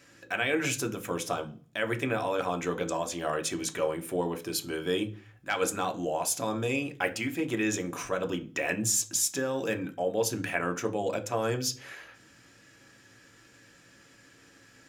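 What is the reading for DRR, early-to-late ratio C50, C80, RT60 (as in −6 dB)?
5.5 dB, 18.0 dB, 23.0 dB, 0.40 s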